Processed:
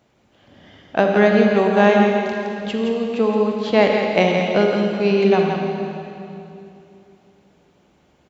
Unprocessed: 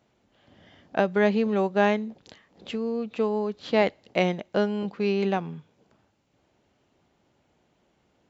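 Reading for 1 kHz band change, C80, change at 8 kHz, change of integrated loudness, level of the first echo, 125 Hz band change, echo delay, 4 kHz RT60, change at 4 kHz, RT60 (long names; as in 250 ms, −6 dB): +9.0 dB, 1.0 dB, can't be measured, +8.0 dB, −6.5 dB, +8.5 dB, 168 ms, 2.5 s, +9.0 dB, 2.9 s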